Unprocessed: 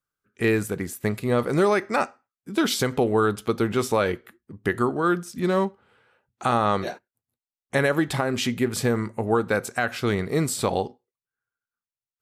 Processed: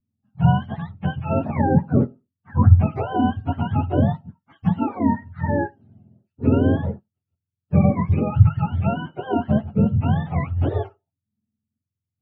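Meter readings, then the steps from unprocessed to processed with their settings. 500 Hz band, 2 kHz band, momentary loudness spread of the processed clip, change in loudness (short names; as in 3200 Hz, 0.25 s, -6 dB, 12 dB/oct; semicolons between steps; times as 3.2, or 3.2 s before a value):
-4.0 dB, -8.5 dB, 10 LU, +3.5 dB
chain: spectrum mirrored in octaves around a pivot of 570 Hz; tilt -4.5 dB/oct; gain -3.5 dB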